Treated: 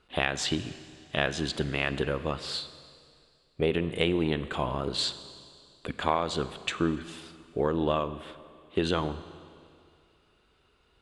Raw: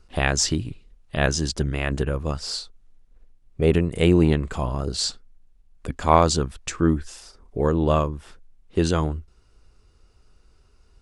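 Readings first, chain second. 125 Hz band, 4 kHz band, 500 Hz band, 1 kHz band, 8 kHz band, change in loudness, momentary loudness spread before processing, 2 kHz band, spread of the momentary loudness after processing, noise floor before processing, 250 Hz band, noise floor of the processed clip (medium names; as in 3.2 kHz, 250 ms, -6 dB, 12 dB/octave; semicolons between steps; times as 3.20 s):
-11.0 dB, -2.5 dB, -6.0 dB, -7.0 dB, -12.5 dB, -7.0 dB, 14 LU, -2.5 dB, 15 LU, -58 dBFS, -7.5 dB, -66 dBFS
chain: high-pass 280 Hz 6 dB/octave; resonant high shelf 4.4 kHz -7 dB, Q 3; compression 6:1, threshold -22 dBFS, peak gain reduction 12 dB; Schroeder reverb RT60 2.3 s, combs from 32 ms, DRR 13 dB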